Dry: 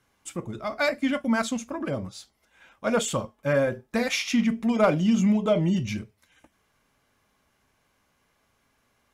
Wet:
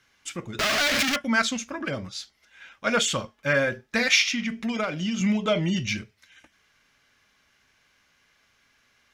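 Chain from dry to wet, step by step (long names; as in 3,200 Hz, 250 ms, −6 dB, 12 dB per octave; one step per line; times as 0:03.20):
0:00.59–0:01.16: sign of each sample alone
flat-topped bell 3,000 Hz +10.5 dB 2.5 octaves
0:04.23–0:05.21: downward compressor 10 to 1, threshold −22 dBFS, peak gain reduction 10 dB
level −2 dB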